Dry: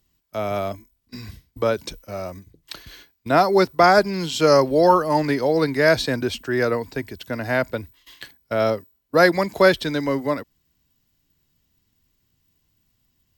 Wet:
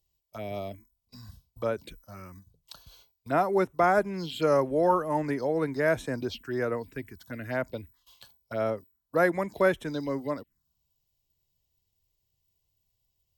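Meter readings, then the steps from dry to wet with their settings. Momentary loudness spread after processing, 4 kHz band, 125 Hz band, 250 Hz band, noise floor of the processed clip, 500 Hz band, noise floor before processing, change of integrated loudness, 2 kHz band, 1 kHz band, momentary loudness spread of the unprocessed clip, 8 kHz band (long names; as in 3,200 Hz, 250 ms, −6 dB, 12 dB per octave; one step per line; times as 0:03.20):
17 LU, −15.0 dB, −8.0 dB, −8.0 dB, −79 dBFS, −8.5 dB, −70 dBFS, −8.5 dB, −10.0 dB, −8.5 dB, 19 LU, below −10 dB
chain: phaser swept by the level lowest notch 250 Hz, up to 4,600 Hz, full sweep at −16.5 dBFS
level −8 dB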